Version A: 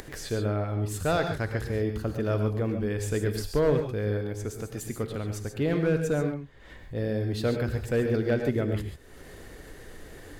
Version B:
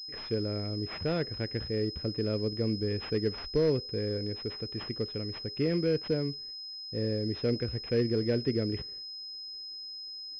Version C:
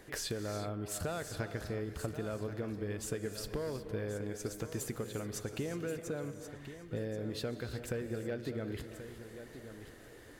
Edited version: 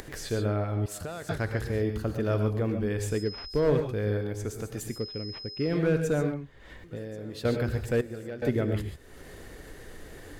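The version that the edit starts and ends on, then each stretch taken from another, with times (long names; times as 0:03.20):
A
0:00.86–0:01.29: punch in from C
0:03.18–0:03.60: punch in from B, crossfade 0.24 s
0:04.95–0:05.72: punch in from B, crossfade 0.16 s
0:06.84–0:07.45: punch in from C
0:08.01–0:08.42: punch in from C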